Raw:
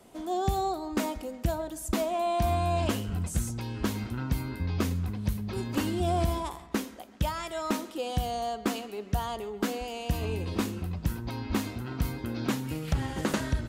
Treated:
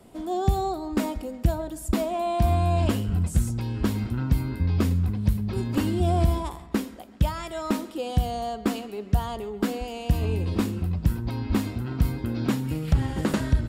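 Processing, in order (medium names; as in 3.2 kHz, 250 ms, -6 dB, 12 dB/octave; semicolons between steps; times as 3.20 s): bass shelf 320 Hz +8 dB; band-stop 6.2 kHz, Q 11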